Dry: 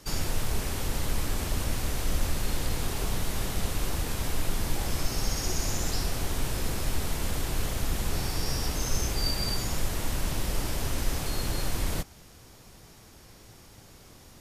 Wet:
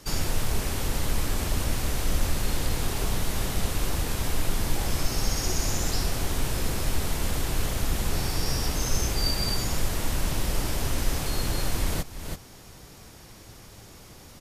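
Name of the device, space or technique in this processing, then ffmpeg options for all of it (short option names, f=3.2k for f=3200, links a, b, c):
ducked delay: -filter_complex "[0:a]asplit=3[a][b][c];[b]adelay=330,volume=-3dB[d];[c]apad=whole_len=649903[e];[d][e]sidechaincompress=threshold=-44dB:ratio=6:attack=22:release=291[f];[a][f]amix=inputs=2:normalize=0,volume=2.5dB"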